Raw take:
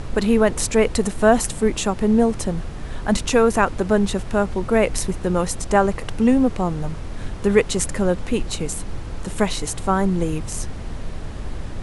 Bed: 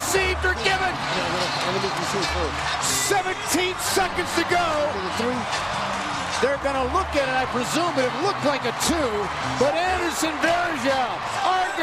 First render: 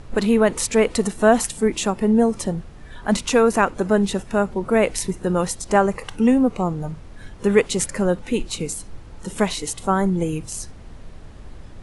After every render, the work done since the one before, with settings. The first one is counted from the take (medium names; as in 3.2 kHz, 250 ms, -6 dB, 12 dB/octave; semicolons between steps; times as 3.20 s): noise print and reduce 10 dB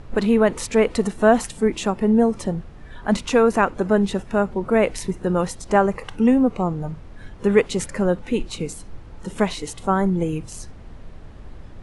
treble shelf 5.1 kHz -10 dB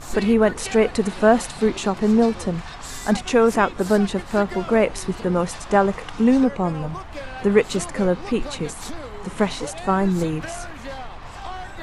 add bed -13 dB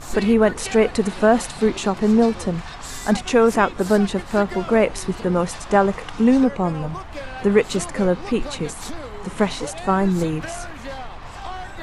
trim +1 dB; peak limiter -3 dBFS, peak gain reduction 2 dB